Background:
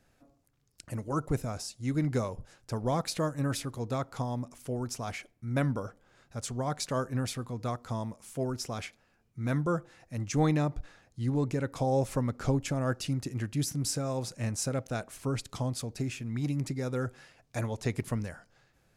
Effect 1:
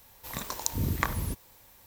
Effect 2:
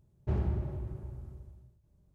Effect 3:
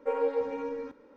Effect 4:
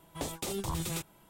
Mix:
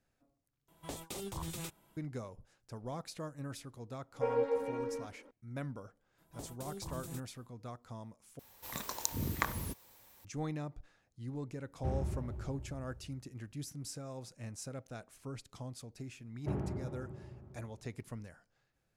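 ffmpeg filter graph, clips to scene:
-filter_complex "[4:a]asplit=2[s0][s1];[2:a]asplit=2[s2][s3];[0:a]volume=0.237[s4];[s1]equalizer=f=2600:w=0.54:g=-10[s5];[1:a]lowshelf=f=85:g=-8.5[s6];[s3]highpass=140,lowpass=2100[s7];[s4]asplit=3[s8][s9][s10];[s8]atrim=end=0.684[s11];[s0]atrim=end=1.29,asetpts=PTS-STARTPTS,volume=0.447[s12];[s9]atrim=start=1.966:end=8.394[s13];[s6]atrim=end=1.86,asetpts=PTS-STARTPTS,volume=0.596[s14];[s10]atrim=start=10.246[s15];[3:a]atrim=end=1.16,asetpts=PTS-STARTPTS,volume=0.668,afade=t=in:d=0.004:c=hsin,afade=t=out:st=1.156:d=0.004:c=hsin,adelay=4150[s16];[s5]atrim=end=1.29,asetpts=PTS-STARTPTS,volume=0.335,afade=t=in:d=0.004:c=hsin,afade=t=out:st=1.286:d=0.004:c=hsin,adelay=272538S[s17];[s2]atrim=end=2.14,asetpts=PTS-STARTPTS,volume=0.531,afade=t=in:d=0.004:c=hsin,afade=t=out:st=2.136:d=0.004:c=hsin,adelay=11560[s18];[s7]atrim=end=2.14,asetpts=PTS-STARTPTS,volume=0.891,afade=t=in:d=0.004:c=hsin,afade=t=out:st=2.136:d=0.004:c=hsin,adelay=16190[s19];[s11][s12]acrossfade=d=0.004:c1=hsin:c2=hsin[s20];[s20][s13]acrossfade=d=0.004:c1=hsin:c2=hsin[s21];[s21][s14]acrossfade=d=0.004:c1=hsin:c2=hsin[s22];[s22][s15]acrossfade=d=0.004:c1=hsin:c2=hsin[s23];[s23][s16][s17][s18][s19]amix=inputs=5:normalize=0"

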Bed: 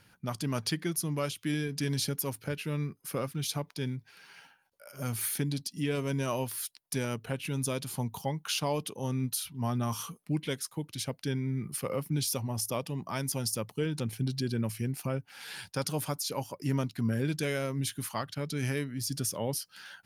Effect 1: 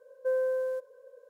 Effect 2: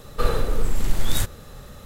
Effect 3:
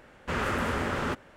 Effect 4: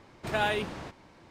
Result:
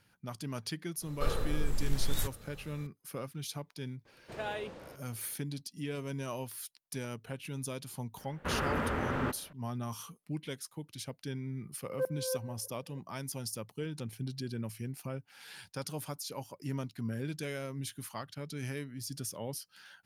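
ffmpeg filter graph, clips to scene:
-filter_complex "[0:a]volume=0.447[s0];[4:a]equalizer=f=510:w=3.1:g=10.5[s1];[3:a]equalizer=f=7000:w=0.61:g=-12.5[s2];[1:a]aeval=exprs='val(0)*pow(10,-27*if(lt(mod(-3.2*n/s,1),2*abs(-3.2)/1000),1-mod(-3.2*n/s,1)/(2*abs(-3.2)/1000),(mod(-3.2*n/s,1)-2*abs(-3.2)/1000)/(1-2*abs(-3.2)/1000))/20)':c=same[s3];[2:a]atrim=end=1.85,asetpts=PTS-STARTPTS,volume=0.282,afade=t=in:d=0.004:c=hsin,afade=t=out:st=1.846:d=0.004:c=hsin,adelay=1020[s4];[s1]atrim=end=1.3,asetpts=PTS-STARTPTS,volume=0.251,afade=t=in:d=0.004:c=hsin,afade=t=out:st=1.296:d=0.004:c=hsin,adelay=178605S[s5];[s2]atrim=end=1.36,asetpts=PTS-STARTPTS,volume=0.708,afade=t=in:d=0.004:c=hsin,afade=t=out:st=1.356:d=0.004:c=hsin,adelay=8170[s6];[s3]atrim=end=1.29,asetpts=PTS-STARTPTS,volume=0.944,afade=t=in:d=0.004:c=hsin,afade=t=out:st=1.286:d=0.004:c=hsin,adelay=11740[s7];[s0][s4][s5][s6][s7]amix=inputs=5:normalize=0"

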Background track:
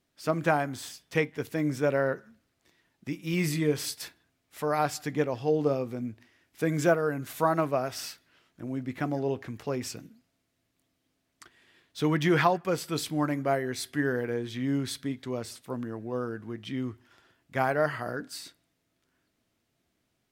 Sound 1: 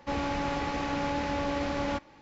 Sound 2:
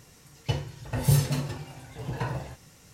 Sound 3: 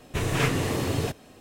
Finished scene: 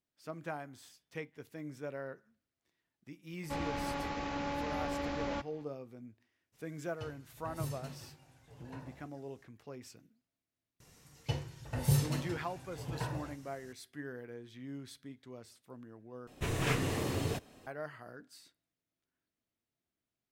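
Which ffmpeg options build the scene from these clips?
-filter_complex "[2:a]asplit=2[s0][s1];[0:a]volume=0.158,asplit=2[s2][s3];[s2]atrim=end=16.274[s4];[3:a]atrim=end=1.4,asetpts=PTS-STARTPTS,volume=0.422[s5];[s3]atrim=start=17.666[s6];[1:a]atrim=end=2.21,asetpts=PTS-STARTPTS,volume=0.473,afade=t=in:d=0.004:c=hsin,afade=t=out:st=2.206:d=0.004:c=hsin,adelay=3430[s7];[s0]atrim=end=2.93,asetpts=PTS-STARTPTS,volume=0.126,afade=t=in:d=0.02,afade=t=out:st=2.91:d=0.02,adelay=6520[s8];[s1]atrim=end=2.93,asetpts=PTS-STARTPTS,volume=0.447,afade=t=in:d=0.004:c=hsin,afade=t=out:st=2.926:d=0.004:c=hsin,adelay=10800[s9];[s4][s5]acrossfade=d=0.004:c1=hsin:c2=hsin[s10];[s10][s6]acrossfade=d=0.004:c1=hsin:c2=hsin[s11];[s11][s7][s8][s9]amix=inputs=4:normalize=0"

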